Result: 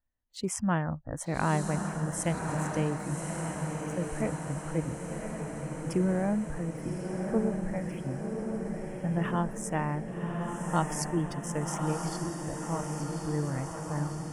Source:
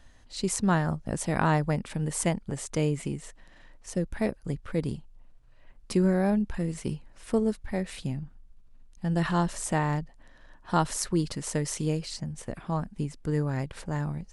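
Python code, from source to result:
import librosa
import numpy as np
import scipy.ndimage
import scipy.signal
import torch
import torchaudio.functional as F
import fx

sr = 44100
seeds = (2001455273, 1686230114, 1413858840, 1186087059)

p1 = fx.wiener(x, sr, points=9)
p2 = fx.noise_reduce_blind(p1, sr, reduce_db=27)
p3 = p2 + fx.echo_diffused(p2, sr, ms=1142, feedback_pct=67, wet_db=-4, dry=0)
y = F.gain(torch.from_numpy(p3), -3.5).numpy()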